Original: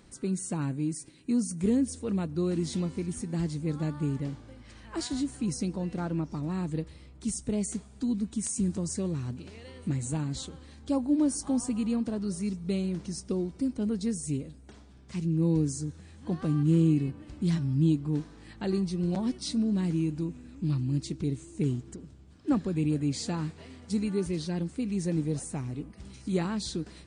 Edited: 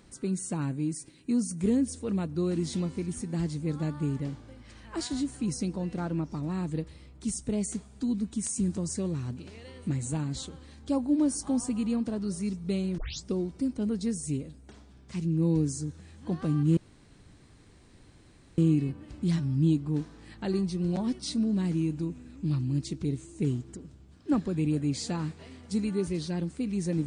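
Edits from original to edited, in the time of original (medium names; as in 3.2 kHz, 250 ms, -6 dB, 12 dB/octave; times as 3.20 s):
12.98 s: tape start 0.26 s
16.77 s: insert room tone 1.81 s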